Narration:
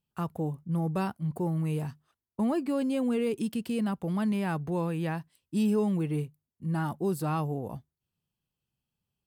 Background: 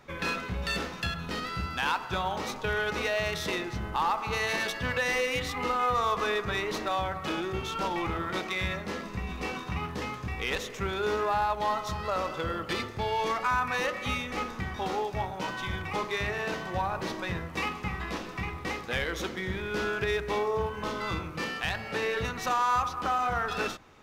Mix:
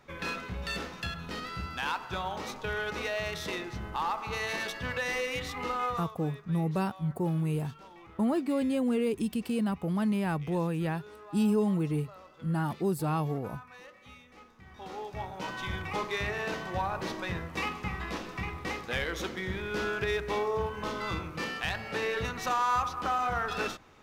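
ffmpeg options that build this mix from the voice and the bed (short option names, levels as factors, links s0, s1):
-filter_complex "[0:a]adelay=5800,volume=1[s0];[1:a]volume=5.96,afade=t=out:st=5.85:d=0.26:silence=0.141254,afade=t=in:st=14.6:d=1.1:silence=0.105925[s1];[s0][s1]amix=inputs=2:normalize=0"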